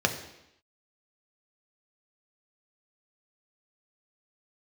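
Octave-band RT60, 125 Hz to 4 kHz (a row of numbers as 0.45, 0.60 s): 0.75, 0.85, 0.85, 0.85, 0.85, 0.85 s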